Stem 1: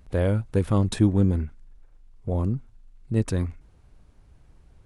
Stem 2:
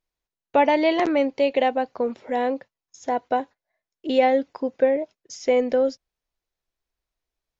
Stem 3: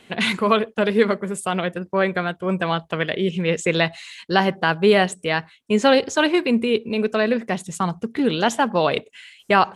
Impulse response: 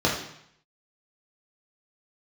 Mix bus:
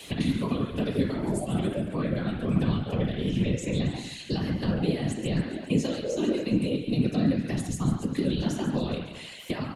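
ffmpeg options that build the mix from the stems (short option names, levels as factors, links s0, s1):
-filter_complex "[0:a]volume=0.282[s0];[1:a]asplit=2[s1][s2];[s2]afreqshift=-0.69[s3];[s1][s3]amix=inputs=2:normalize=1,adelay=550,volume=0.501,asplit=2[s4][s5];[s5]volume=0.473[s6];[2:a]crystalizer=i=7.5:c=0,acrossover=split=180|510[s7][s8][s9];[s7]acompressor=threshold=0.02:ratio=4[s10];[s8]acompressor=threshold=0.0282:ratio=4[s11];[s9]acompressor=threshold=0.158:ratio=4[s12];[s10][s11][s12]amix=inputs=3:normalize=0,volume=1.19,asplit=3[s13][s14][s15];[s14]volume=0.251[s16];[s15]volume=0.335[s17];[3:a]atrim=start_sample=2205[s18];[s6][s16]amix=inputs=2:normalize=0[s19];[s19][s18]afir=irnorm=-1:irlink=0[s20];[s17]aecho=0:1:138|276|414|552|690|828|966:1|0.49|0.24|0.118|0.0576|0.0282|0.0138[s21];[s0][s4][s13][s20][s21]amix=inputs=5:normalize=0,acrossover=split=290[s22][s23];[s23]acompressor=threshold=0.0178:ratio=4[s24];[s22][s24]amix=inputs=2:normalize=0,afftfilt=real='hypot(re,im)*cos(2*PI*random(0))':imag='hypot(re,im)*sin(2*PI*random(1))':win_size=512:overlap=0.75"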